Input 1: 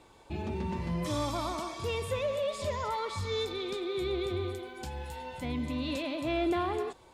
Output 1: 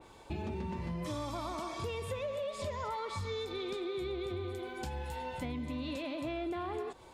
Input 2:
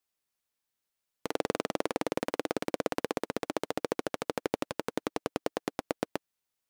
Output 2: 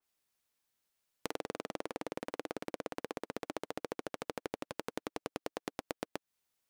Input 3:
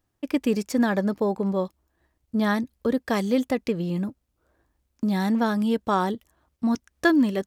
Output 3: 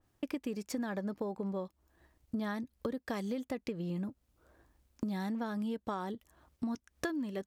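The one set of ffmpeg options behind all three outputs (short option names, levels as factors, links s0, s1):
-af "acompressor=threshold=0.0141:ratio=8,adynamicequalizer=threshold=0.00158:dfrequency=2900:dqfactor=0.7:tfrequency=2900:tqfactor=0.7:attack=5:release=100:ratio=0.375:range=1.5:mode=cutabove:tftype=highshelf,volume=1.33"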